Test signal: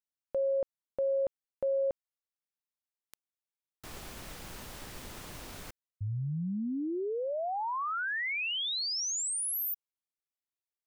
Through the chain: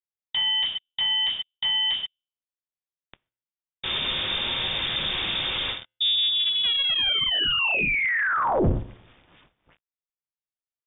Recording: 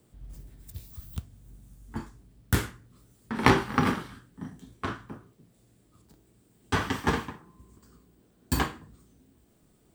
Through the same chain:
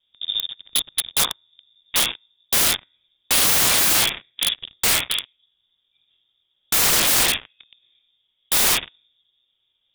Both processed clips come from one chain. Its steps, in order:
loose part that buzzes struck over −27 dBFS, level −19 dBFS
high-frequency loss of the air 150 metres
tuned comb filter 81 Hz, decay 0.58 s, harmonics all, mix 50%
reverb whose tail is shaped and stops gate 170 ms falling, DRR −2 dB
leveller curve on the samples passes 5
voice inversion scrambler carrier 3,600 Hz
low-shelf EQ 350 Hz +8 dB
wrap-around overflow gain 15 dB
level +3 dB

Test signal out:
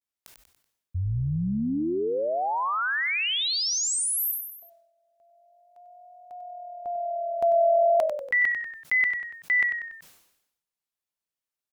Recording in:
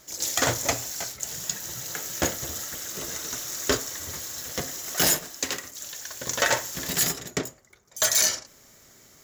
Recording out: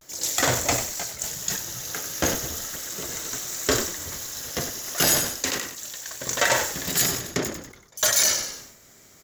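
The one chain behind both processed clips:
pitch vibrato 0.36 Hz 51 cents
echo with shifted repeats 95 ms, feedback 37%, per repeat −43 Hz, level −11 dB
level that may fall only so fast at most 68 dB per second
level +1 dB

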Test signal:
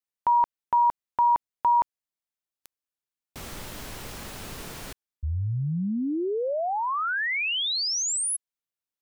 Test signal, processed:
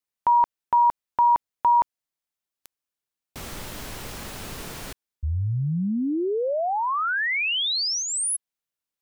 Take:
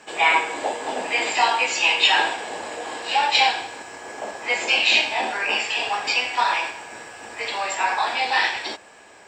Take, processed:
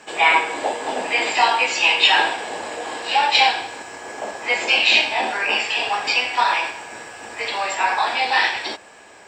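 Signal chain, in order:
dynamic equaliser 6,800 Hz, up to −5 dB, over −46 dBFS, Q 3.8
level +2.5 dB

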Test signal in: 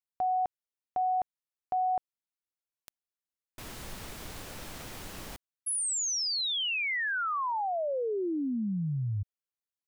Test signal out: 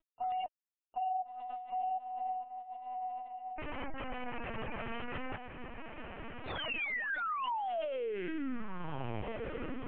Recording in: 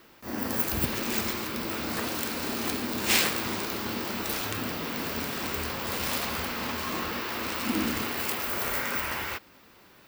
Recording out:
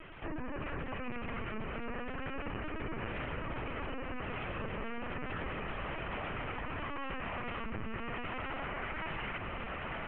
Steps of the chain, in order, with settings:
variable-slope delta modulation 16 kbit/s
downward compressor 16 to 1, threshold −35 dBFS
flanger 0.32 Hz, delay 2.7 ms, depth 1.9 ms, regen +40%
gate on every frequency bin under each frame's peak −25 dB strong
feedback delay with all-pass diffusion 1,358 ms, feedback 42%, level −8 dB
brickwall limiter −40.5 dBFS
linear-prediction vocoder at 8 kHz pitch kept
level +10 dB

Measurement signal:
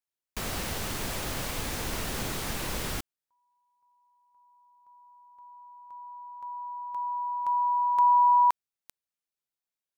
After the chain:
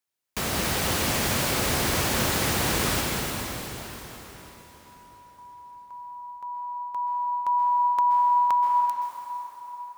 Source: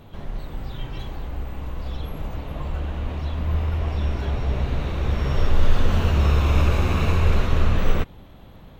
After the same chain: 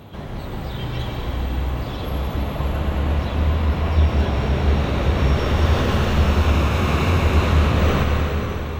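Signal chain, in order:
high-pass filter 65 Hz
downward compressor, threshold −22 dBFS
dense smooth reverb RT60 4.4 s, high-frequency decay 0.9×, pre-delay 115 ms, DRR −0.5 dB
level +6 dB

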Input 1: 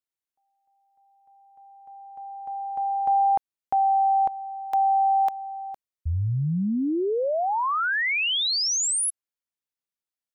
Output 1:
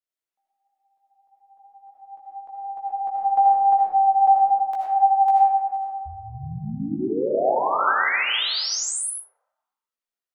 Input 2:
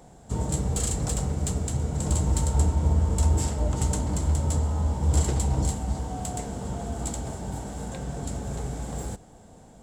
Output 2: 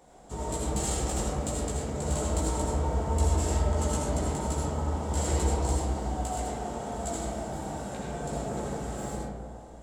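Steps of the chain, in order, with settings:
multi-voice chorus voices 6, 1 Hz, delay 16 ms, depth 3 ms
bass and treble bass −10 dB, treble −2 dB
comb and all-pass reverb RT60 1.9 s, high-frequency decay 0.3×, pre-delay 40 ms, DRR −4 dB

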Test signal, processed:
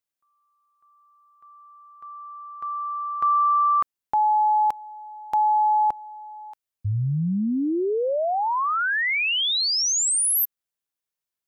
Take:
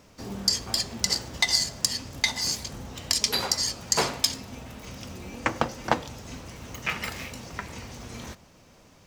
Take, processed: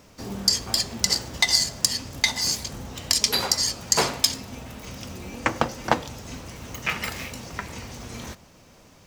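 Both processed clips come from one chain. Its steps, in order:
high-shelf EQ 9,500 Hz +3.5 dB
level +2.5 dB

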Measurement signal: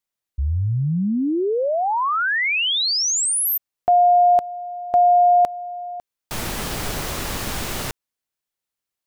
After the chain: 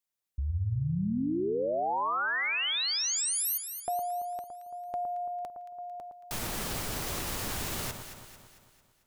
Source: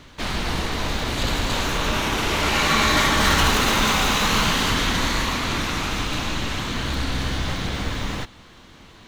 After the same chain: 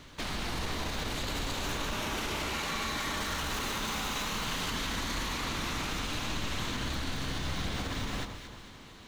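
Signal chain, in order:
high-shelf EQ 5,500 Hz +4.5 dB
brickwall limiter −18 dBFS
downward compressor 2 to 1, threshold −27 dBFS
delay that swaps between a low-pass and a high-pass 112 ms, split 1,400 Hz, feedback 70%, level −6.5 dB
level −5.5 dB

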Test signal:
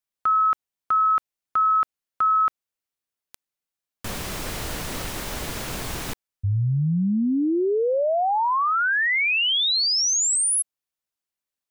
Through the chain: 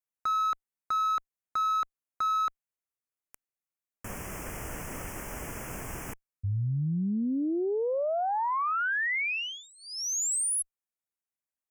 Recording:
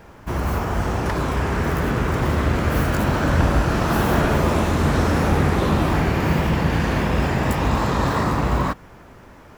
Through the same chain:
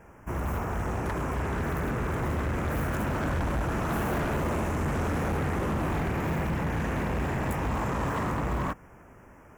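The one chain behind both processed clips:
harmonic generator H 6 −29 dB, 8 −42 dB, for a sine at −6 dBFS
Butterworth band-reject 4,000 Hz, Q 1.2
hard clipping −18 dBFS
level −7 dB

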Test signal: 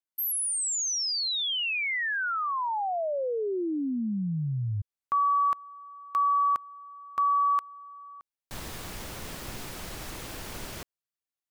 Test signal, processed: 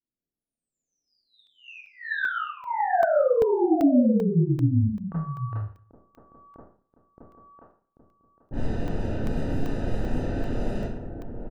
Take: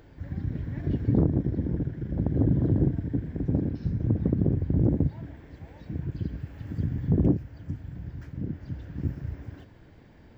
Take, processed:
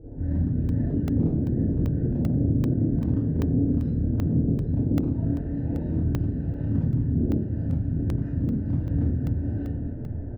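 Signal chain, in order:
brickwall limiter −23 dBFS
moving average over 40 samples
downward compressor 12 to 1, threshold −35 dBFS
on a send: single-tap delay 789 ms −8 dB
on the sum: hard clipping −29.5 dBFS
low-pass that shuts in the quiet parts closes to 360 Hz, open at −36 dBFS
four-comb reverb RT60 0.46 s, combs from 25 ms, DRR −8 dB
regular buffer underruns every 0.39 s, samples 64, zero, from 0:00.69
level +7.5 dB

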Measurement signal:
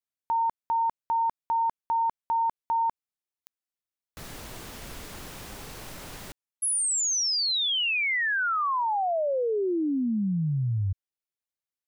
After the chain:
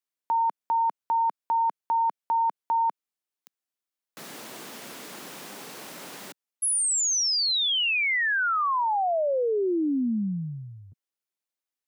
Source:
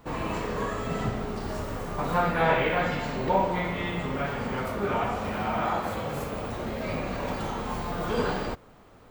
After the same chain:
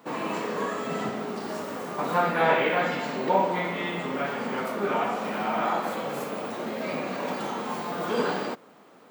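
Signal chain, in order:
high-pass filter 190 Hz 24 dB per octave
level +1.5 dB

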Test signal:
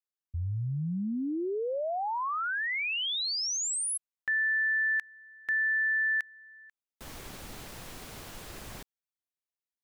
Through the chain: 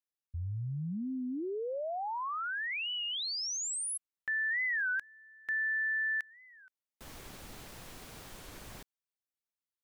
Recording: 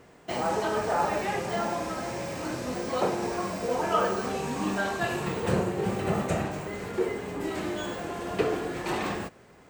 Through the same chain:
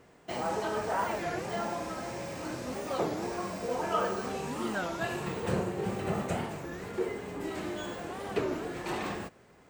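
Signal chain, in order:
wow of a warped record 33 1/3 rpm, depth 250 cents
level −4.5 dB

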